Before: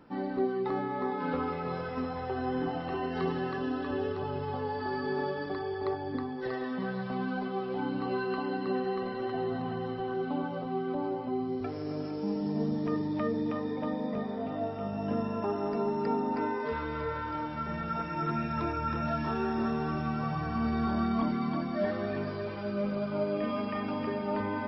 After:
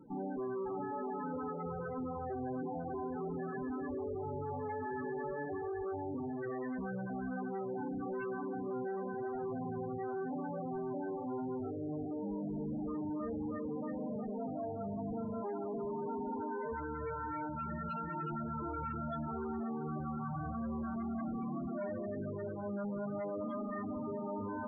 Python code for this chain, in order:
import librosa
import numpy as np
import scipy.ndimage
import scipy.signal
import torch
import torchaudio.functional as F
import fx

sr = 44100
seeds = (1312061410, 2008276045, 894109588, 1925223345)

y = fx.tube_stage(x, sr, drive_db=40.0, bias=0.55)
y = fx.spec_topn(y, sr, count=16)
y = F.gain(torch.from_numpy(y), 4.0).numpy()